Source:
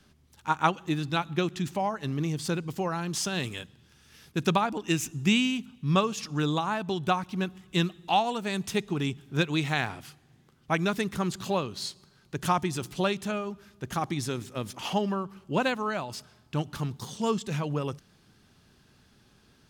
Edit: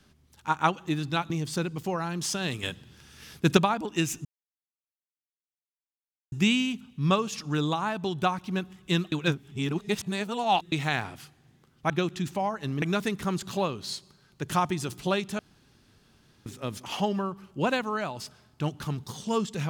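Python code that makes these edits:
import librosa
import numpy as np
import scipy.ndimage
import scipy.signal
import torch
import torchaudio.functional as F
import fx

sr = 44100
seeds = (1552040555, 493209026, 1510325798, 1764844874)

y = fx.edit(x, sr, fx.move(start_s=1.3, length_s=0.92, to_s=10.75),
    fx.clip_gain(start_s=3.55, length_s=0.94, db=6.5),
    fx.insert_silence(at_s=5.17, length_s=2.07),
    fx.reverse_span(start_s=7.97, length_s=1.6),
    fx.room_tone_fill(start_s=13.32, length_s=1.07), tone=tone)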